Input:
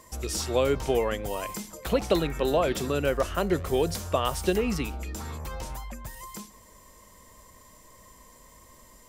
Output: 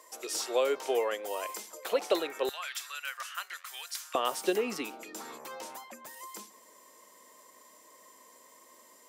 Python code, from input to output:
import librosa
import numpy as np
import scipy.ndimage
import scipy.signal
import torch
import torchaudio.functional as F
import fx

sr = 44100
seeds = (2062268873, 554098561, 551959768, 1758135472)

y = fx.highpass(x, sr, hz=fx.steps((0.0, 380.0), (2.49, 1300.0), (4.15, 280.0)), slope=24)
y = y * librosa.db_to_amplitude(-2.5)